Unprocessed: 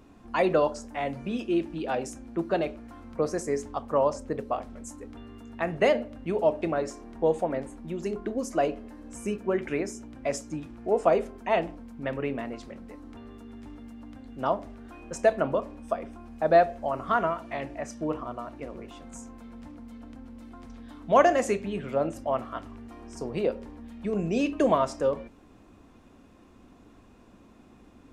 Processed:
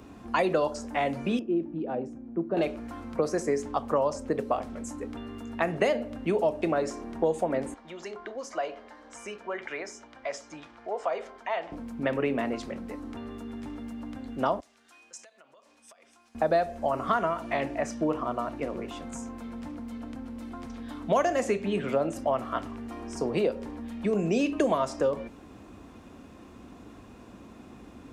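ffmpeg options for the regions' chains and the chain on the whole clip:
-filter_complex "[0:a]asettb=1/sr,asplit=3[s0][s1][s2];[s0]atrim=end=1.394[s3];[s1]atrim=start=1.39:end=2.57,asetpts=PTS-STARTPTS,afade=t=in:d=0.004:c=qsin,afade=t=out:st=1.176:d=0.004:c=qsin,bandpass=f=160:t=q:w=0.75,lowshelf=f=150:g=-9[s4];[s2]atrim=start=2.566[s5];[s3][s4]acrossfade=d=0.004:c1=hsin:c2=qsin[s6];[s6][s5]acrossfade=d=0.004:c1=qsin:c2=hsin,asettb=1/sr,asplit=3[s7][s8][s9];[s7]atrim=end=7.744[s10];[s8]atrim=start=7.74:end=11.72,asetpts=PTS-STARTPTS,afade=t=in:d=0.004:c=qsin,afade=t=out:st=3.976:d=0.004:c=qsin,acrossover=split=570 6400:gain=0.0891 1 0.1[s11][s12][s13];[s11][s12][s13]amix=inputs=3:normalize=0,bandreject=f=2600:w=12,acompressor=threshold=0.00501:ratio=1.5:attack=3.2:release=140:knee=1:detection=peak[s14];[s9]atrim=start=11.716[s15];[s10][s14]acrossfade=d=0.004:c1=hsin:c2=qsin[s16];[s16][s15]acrossfade=d=0.004:c1=qsin:c2=hsin,asettb=1/sr,asplit=3[s17][s18][s19];[s17]atrim=end=14.604[s20];[s18]atrim=start=14.6:end=16.35,asetpts=PTS-STARTPTS,afade=t=in:d=0.004:c=qsin,afade=t=out:st=1.746:d=0.004:c=qsin,acompressor=threshold=0.0126:ratio=20:attack=3.2:release=140:knee=1:detection=peak,bandpass=f=6400:t=q:w=0.97[s21];[s19]atrim=start=16.346[s22];[s20][s21]acrossfade=d=0.004:c1=hsin:c2=qsin[s23];[s23][s22]acrossfade=d=0.004:c1=qsin:c2=hsin,highpass=47,acrossover=split=170|4800[s24][s25][s26];[s24]acompressor=threshold=0.00251:ratio=4[s27];[s25]acompressor=threshold=0.0316:ratio=4[s28];[s26]acompressor=threshold=0.00251:ratio=4[s29];[s27][s28][s29]amix=inputs=3:normalize=0,volume=2.11"

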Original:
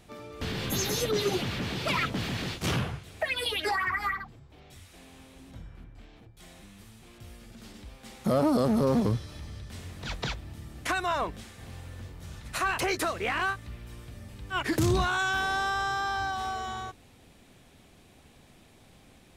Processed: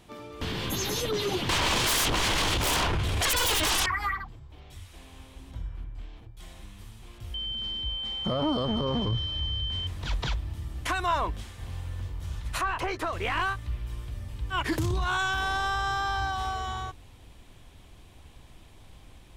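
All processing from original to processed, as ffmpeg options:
-filter_complex "[0:a]asettb=1/sr,asplit=3[s0][s1][s2];[s0]atrim=end=1.494[s3];[s1]atrim=start=1.49:end=3.86,asetpts=PTS-STARTPTS,afade=t=in:d=0.004:c=qsin,afade=t=out:st=2.366:d=0.004:c=qsin,highshelf=f=5900:g=-7.5,aeval=exprs='0.133*sin(PI/2*8.91*val(0)/0.133)':c=same[s4];[s2]atrim=start=3.856[s5];[s3][s4]acrossfade=d=0.004:c1=hsin:c2=qsin[s6];[s6][s5]acrossfade=d=0.004:c1=qsin:c2=hsin,asettb=1/sr,asplit=3[s7][s8][s9];[s7]atrim=end=7.344[s10];[s8]atrim=start=7.34:end=9.87,asetpts=PTS-STARTPTS,afade=t=in:d=0.004:c=qsin,afade=t=out:st=2.526:d=0.004:c=qsin,lowpass=4600,aeval=exprs='val(0)+0.0178*sin(2*PI*3100*n/s)':c=same[s11];[s9]atrim=start=9.866[s12];[s10][s11]acrossfade=d=0.004:c1=hsin:c2=qsin[s13];[s13][s12]acrossfade=d=0.004:c1=qsin:c2=hsin,asettb=1/sr,asplit=3[s14][s15][s16];[s14]atrim=end=12.614[s17];[s15]atrim=start=12.61:end=13.13,asetpts=PTS-STARTPTS,afade=t=in:d=0.004:c=qsin,afade=t=out:st=0.516:d=0.004:c=qsin,highshelf=f=8900:g=4.5,asplit=2[s18][s19];[s19]highpass=f=720:p=1,volume=2,asoftclip=type=tanh:threshold=0.112[s20];[s18][s20]amix=inputs=2:normalize=0,lowpass=f=1100:p=1,volume=0.501[s21];[s16]atrim=start=13.126[s22];[s17][s21]acrossfade=d=0.004:c1=hsin:c2=qsin[s23];[s23][s22]acrossfade=d=0.004:c1=qsin:c2=hsin,asubboost=boost=4.5:cutoff=93,alimiter=limit=0.0841:level=0:latency=1:release=11,equalizer=f=315:t=o:w=0.33:g=4,equalizer=f=1000:t=o:w=0.33:g=6,equalizer=f=3150:t=o:w=0.33:g=4"

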